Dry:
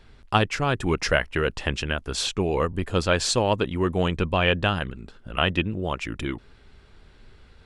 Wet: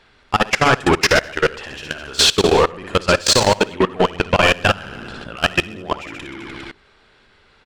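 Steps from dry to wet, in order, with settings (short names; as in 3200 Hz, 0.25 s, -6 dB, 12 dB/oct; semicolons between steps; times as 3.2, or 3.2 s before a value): overdrive pedal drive 19 dB, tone 4300 Hz, clips at -5 dBFS; compressor 8:1, threshold -18 dBFS, peak gain reduction 7 dB; soft clip -14 dBFS, distortion -20 dB; on a send: reverse bouncing-ball echo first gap 60 ms, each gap 1.15×, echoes 5; on the sum: level quantiser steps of 21 dB; gain +9 dB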